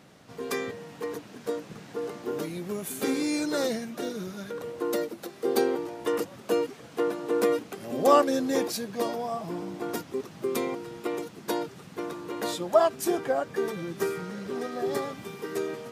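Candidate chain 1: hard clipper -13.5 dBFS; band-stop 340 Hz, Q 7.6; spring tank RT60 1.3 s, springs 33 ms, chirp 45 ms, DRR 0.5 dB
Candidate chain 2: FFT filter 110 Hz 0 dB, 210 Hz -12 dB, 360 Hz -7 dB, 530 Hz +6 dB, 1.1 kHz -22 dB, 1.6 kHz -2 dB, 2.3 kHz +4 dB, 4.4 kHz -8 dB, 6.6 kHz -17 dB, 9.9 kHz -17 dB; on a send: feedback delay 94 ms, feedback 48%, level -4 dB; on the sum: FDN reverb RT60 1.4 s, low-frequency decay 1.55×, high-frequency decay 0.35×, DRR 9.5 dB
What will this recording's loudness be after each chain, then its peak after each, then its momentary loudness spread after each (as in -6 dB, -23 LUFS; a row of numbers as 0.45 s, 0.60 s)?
-27.5 LUFS, -27.0 LUFS; -7.0 dBFS, -5.5 dBFS; 14 LU, 13 LU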